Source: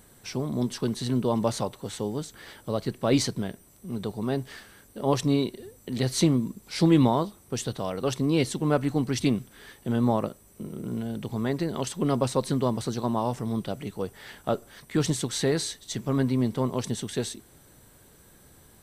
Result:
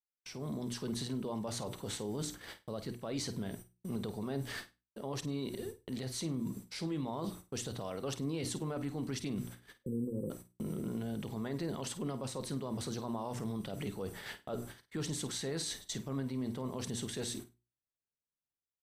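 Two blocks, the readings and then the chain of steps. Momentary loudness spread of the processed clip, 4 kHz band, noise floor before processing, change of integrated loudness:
6 LU, -8.5 dB, -56 dBFS, -11.5 dB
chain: gate -44 dBFS, range -52 dB; hum notches 60/120/180/240/300/360 Hz; spectral selection erased 9.85–10.30 s, 540–7700 Hz; reverse; compression 10:1, threshold -32 dBFS, peak gain reduction 17.5 dB; reverse; peak limiter -31 dBFS, peak gain reduction 10 dB; level rider gain up to 7 dB; flutter echo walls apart 8.7 m, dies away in 0.24 s; trim -5 dB

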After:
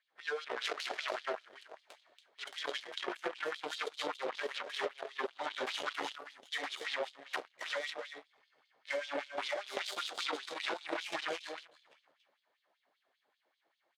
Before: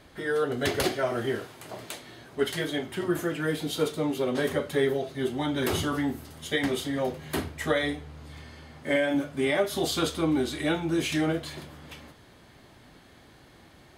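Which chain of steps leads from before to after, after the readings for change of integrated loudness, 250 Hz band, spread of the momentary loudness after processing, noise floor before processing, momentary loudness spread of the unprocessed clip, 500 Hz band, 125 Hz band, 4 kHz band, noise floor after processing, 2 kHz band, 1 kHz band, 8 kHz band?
-11.0 dB, -23.0 dB, 8 LU, -55 dBFS, 15 LU, -13.0 dB, under -35 dB, -5.5 dB, -81 dBFS, -6.5 dB, -5.5 dB, -12.0 dB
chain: hard clipper -24 dBFS, distortion -12 dB; low-pass 7.3 kHz 12 dB/octave; treble shelf 5.3 kHz -9 dB; delay 282 ms -5 dB; Chebyshev shaper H 3 -10 dB, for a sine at -20 dBFS; LFO high-pass sine 5.1 Hz 500–3800 Hz; compression 6:1, threshold -35 dBFS, peak gain reduction 14 dB; trim +1 dB

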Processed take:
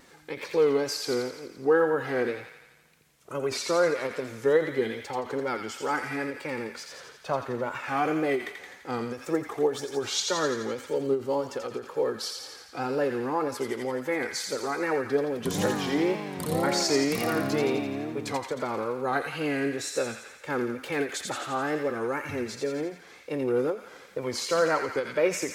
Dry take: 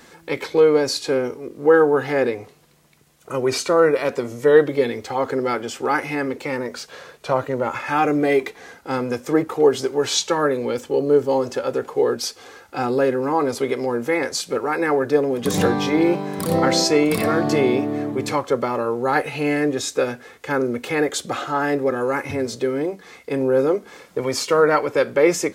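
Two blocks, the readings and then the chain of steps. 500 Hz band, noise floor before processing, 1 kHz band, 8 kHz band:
-8.5 dB, -50 dBFS, -8.0 dB, -6.0 dB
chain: wow and flutter 130 cents; feedback echo behind a high-pass 85 ms, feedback 63%, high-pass 1.5 kHz, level -4 dB; endings held to a fixed fall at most 190 dB/s; trim -8 dB

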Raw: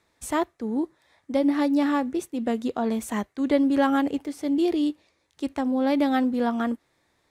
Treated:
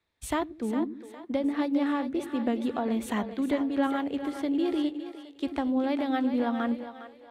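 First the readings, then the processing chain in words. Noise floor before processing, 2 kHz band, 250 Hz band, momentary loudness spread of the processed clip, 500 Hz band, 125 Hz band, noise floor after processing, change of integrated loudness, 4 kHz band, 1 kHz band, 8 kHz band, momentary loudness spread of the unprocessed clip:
-70 dBFS, -4.0 dB, -4.0 dB, 8 LU, -4.5 dB, no reading, -53 dBFS, -4.0 dB, -3.0 dB, -4.5 dB, -5.0 dB, 8 LU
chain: resonant high shelf 4.6 kHz -7 dB, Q 1.5; compression 6:1, threshold -28 dBFS, peak gain reduction 12 dB; on a send: two-band feedback delay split 340 Hz, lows 92 ms, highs 408 ms, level -8.5 dB; on the sum: three bands expanded up and down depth 40%; trim +2.5 dB

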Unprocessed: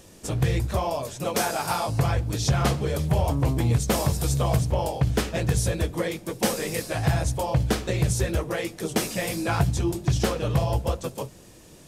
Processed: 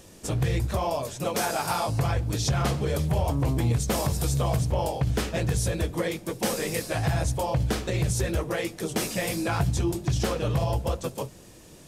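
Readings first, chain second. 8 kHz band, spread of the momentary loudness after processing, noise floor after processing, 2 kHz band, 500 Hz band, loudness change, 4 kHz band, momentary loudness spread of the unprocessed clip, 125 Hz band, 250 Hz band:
-1.5 dB, 4 LU, -49 dBFS, -1.5 dB, -1.5 dB, -1.5 dB, -1.5 dB, 6 LU, -2.0 dB, -1.5 dB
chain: peak limiter -17 dBFS, peak gain reduction 4 dB

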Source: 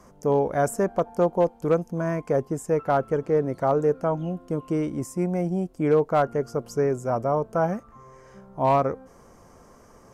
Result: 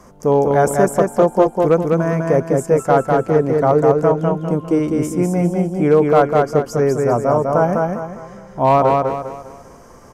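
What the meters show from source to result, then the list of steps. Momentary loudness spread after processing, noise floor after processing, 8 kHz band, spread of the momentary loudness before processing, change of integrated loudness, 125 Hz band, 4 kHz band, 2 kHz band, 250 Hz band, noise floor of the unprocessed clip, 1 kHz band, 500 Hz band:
7 LU, -42 dBFS, +9.0 dB, 7 LU, +9.0 dB, +9.0 dB, no reading, +9.0 dB, +9.0 dB, -53 dBFS, +9.0 dB, +9.0 dB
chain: feedback delay 201 ms, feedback 37%, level -3 dB; trim +7 dB

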